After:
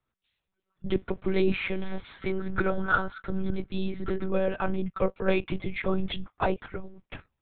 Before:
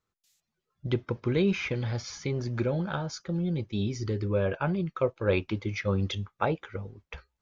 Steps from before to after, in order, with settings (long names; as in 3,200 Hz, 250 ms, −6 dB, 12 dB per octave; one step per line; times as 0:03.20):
0:02.22–0:04.30: parametric band 1,400 Hz +15 dB 0.34 octaves
one-pitch LPC vocoder at 8 kHz 190 Hz
level +1.5 dB